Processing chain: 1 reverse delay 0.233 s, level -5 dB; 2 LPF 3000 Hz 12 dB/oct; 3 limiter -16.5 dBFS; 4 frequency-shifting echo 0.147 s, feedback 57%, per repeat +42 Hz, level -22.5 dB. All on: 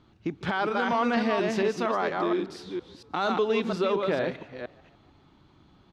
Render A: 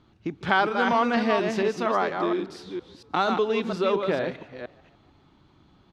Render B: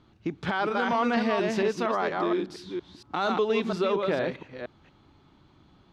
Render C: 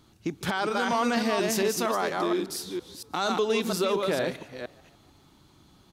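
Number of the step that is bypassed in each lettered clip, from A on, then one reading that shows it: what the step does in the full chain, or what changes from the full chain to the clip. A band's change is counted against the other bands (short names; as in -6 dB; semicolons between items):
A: 3, crest factor change +8.5 dB; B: 4, echo-to-direct -21.0 dB to none; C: 2, 4 kHz band +5.0 dB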